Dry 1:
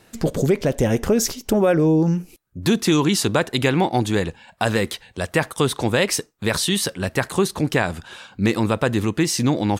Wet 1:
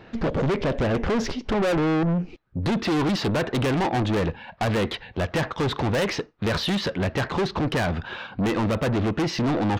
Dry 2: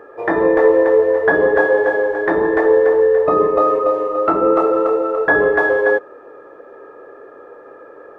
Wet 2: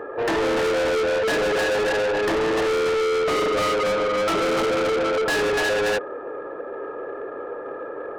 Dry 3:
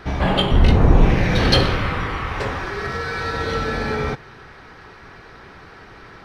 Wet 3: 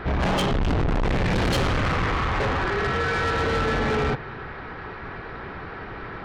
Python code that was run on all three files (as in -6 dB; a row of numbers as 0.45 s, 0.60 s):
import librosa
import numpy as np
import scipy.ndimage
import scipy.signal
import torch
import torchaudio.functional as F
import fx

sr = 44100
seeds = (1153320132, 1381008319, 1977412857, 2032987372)

y = np.clip(x, -10.0 ** (-14.5 / 20.0), 10.0 ** (-14.5 / 20.0))
y = scipy.ndimage.gaussian_filter1d(y, 2.5, mode='constant')
y = 10.0 ** (-28.0 / 20.0) * np.tanh(y / 10.0 ** (-28.0 / 20.0))
y = y * 10.0 ** (7.5 / 20.0)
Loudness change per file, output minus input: -4.0 LU, -7.0 LU, -4.0 LU